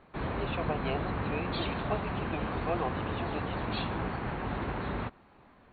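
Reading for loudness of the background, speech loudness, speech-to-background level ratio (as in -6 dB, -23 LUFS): -34.5 LUFS, -39.0 LUFS, -4.5 dB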